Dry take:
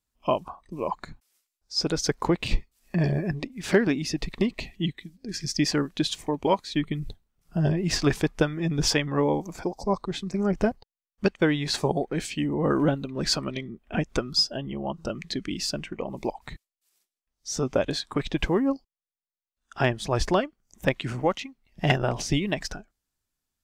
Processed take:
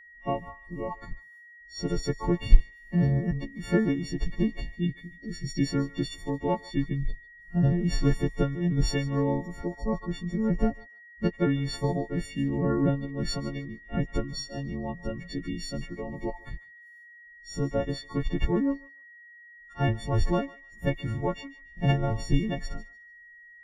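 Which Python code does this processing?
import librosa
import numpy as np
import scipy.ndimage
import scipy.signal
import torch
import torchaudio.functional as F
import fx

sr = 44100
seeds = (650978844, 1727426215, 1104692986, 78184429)

p1 = fx.freq_snap(x, sr, grid_st=4)
p2 = fx.tilt_eq(p1, sr, slope=-4.5)
p3 = p2 + 10.0 ** (-39.0 / 20.0) * np.sin(2.0 * np.pi * 1900.0 * np.arange(len(p2)) / sr)
p4 = p3 + fx.echo_thinned(p3, sr, ms=148, feedback_pct=21, hz=970.0, wet_db=-18, dry=0)
y = p4 * librosa.db_to_amplitude(-10.0)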